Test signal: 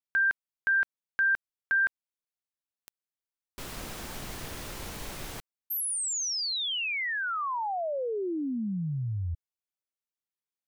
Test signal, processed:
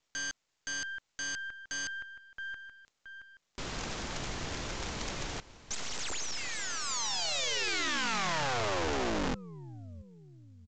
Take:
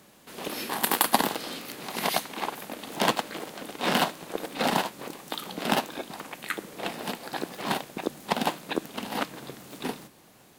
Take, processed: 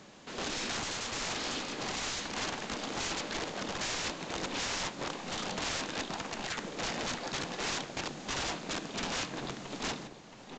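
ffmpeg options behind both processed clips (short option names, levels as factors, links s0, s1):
-af "aeval=exprs='(tanh(10*val(0)+0.6)-tanh(0.6))/10':c=same,aecho=1:1:673|1346|2019:0.126|0.0491|0.0191,acontrast=37,aeval=exprs='(mod(23.7*val(0)+1,2)-1)/23.7':c=same" -ar 16000 -c:a pcm_mulaw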